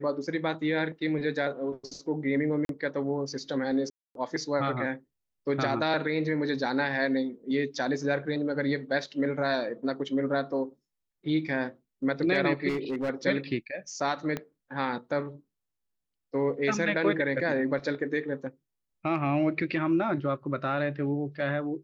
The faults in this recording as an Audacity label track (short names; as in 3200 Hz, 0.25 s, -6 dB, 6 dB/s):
2.650000	2.690000	gap 42 ms
3.900000	4.150000	gap 0.252 s
12.680000	13.100000	clipped -26 dBFS
14.370000	14.370000	pop -18 dBFS